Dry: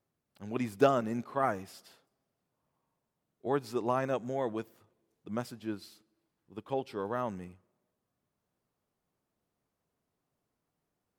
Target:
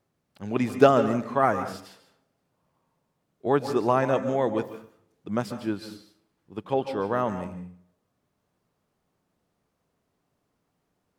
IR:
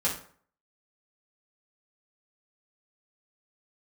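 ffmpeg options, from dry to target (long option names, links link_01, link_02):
-filter_complex "[0:a]highshelf=frequency=9200:gain=-8,asplit=2[link_01][link_02];[1:a]atrim=start_sample=2205,adelay=136[link_03];[link_02][link_03]afir=irnorm=-1:irlink=0,volume=-18dB[link_04];[link_01][link_04]amix=inputs=2:normalize=0,volume=8dB"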